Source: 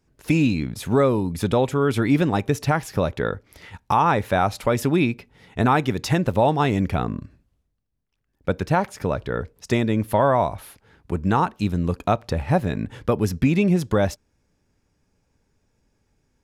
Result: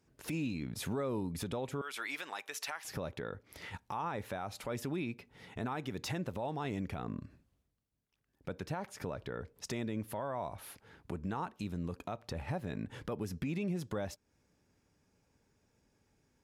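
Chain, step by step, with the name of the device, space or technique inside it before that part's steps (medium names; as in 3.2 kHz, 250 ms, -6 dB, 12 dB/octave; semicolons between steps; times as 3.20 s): 1.81–2.85 s: high-pass 1.2 kHz 12 dB/octave; podcast mastering chain (high-pass 96 Hz 6 dB/octave; de-esser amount 55%; compression 2.5:1, threshold -34 dBFS, peak gain reduction 13 dB; peak limiter -25.5 dBFS, peak gain reduction 8.5 dB; trim -2.5 dB; MP3 96 kbps 48 kHz)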